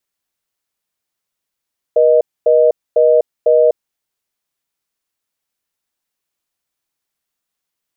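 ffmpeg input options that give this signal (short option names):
-f lavfi -i "aevalsrc='0.316*(sin(2*PI*480*t)+sin(2*PI*620*t))*clip(min(mod(t,0.5),0.25-mod(t,0.5))/0.005,0,1)':d=1.92:s=44100"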